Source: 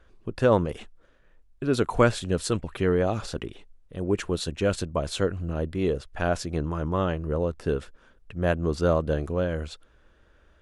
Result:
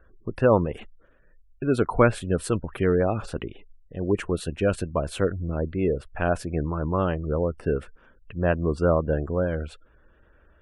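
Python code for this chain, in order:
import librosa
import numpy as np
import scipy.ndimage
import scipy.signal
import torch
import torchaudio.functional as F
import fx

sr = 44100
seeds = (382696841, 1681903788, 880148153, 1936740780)

y = fx.spec_gate(x, sr, threshold_db=-30, keep='strong')
y = fx.band_shelf(y, sr, hz=5000.0, db=-9.0, octaves=1.3)
y = y * 10.0 ** (1.5 / 20.0)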